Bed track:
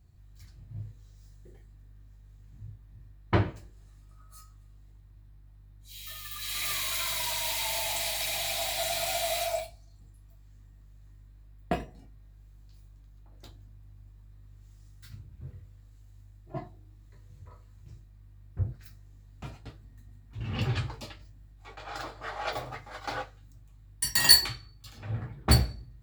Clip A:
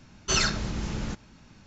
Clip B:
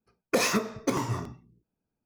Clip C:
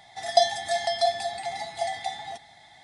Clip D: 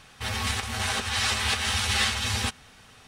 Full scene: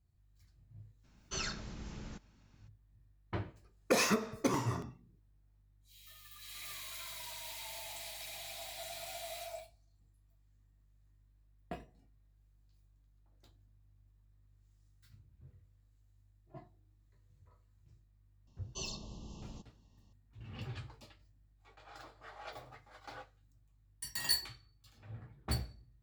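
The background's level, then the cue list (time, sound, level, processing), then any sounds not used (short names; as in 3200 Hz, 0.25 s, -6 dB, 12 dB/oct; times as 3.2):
bed track -14.5 dB
1.03 add A -14.5 dB, fades 0.02 s
3.57 add B -4.5 dB
18.47 add A -17 dB + brick-wall FIR band-stop 1200–2600 Hz
not used: C, D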